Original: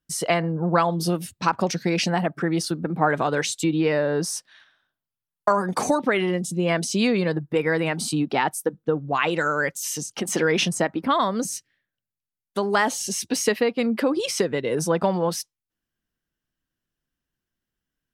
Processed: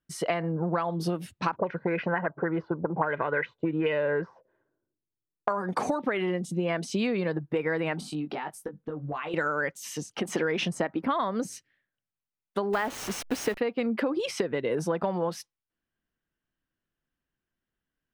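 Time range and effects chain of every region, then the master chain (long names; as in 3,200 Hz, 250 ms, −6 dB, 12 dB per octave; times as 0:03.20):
0:01.56–0:05.48: high-frequency loss of the air 110 metres + comb filter 2 ms, depth 45% + envelope-controlled low-pass 320–3,100 Hz up, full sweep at −16.5 dBFS
0:08.00–0:09.34: downward compressor 8 to 1, threshold −30 dBFS + double-tracking delay 20 ms −6 dB
0:12.73–0:13.58: hold until the input has moved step −27 dBFS + high-shelf EQ 11,000 Hz +6 dB
whole clip: bass and treble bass −3 dB, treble −13 dB; downward compressor, threshold −24 dBFS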